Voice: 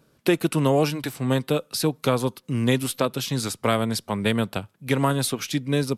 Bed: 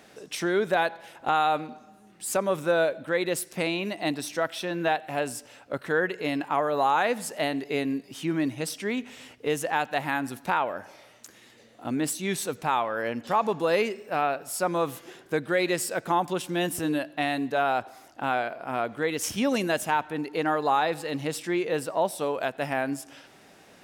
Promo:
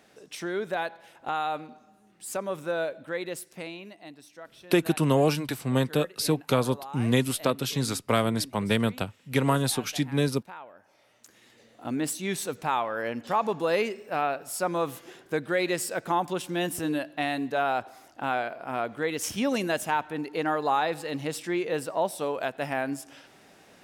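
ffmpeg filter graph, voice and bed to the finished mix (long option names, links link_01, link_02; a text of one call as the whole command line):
ffmpeg -i stem1.wav -i stem2.wav -filter_complex "[0:a]adelay=4450,volume=-2dB[link_01];[1:a]volume=10.5dB,afade=type=out:start_time=3.13:duration=0.94:silence=0.251189,afade=type=in:start_time=10.84:duration=0.86:silence=0.149624[link_02];[link_01][link_02]amix=inputs=2:normalize=0" out.wav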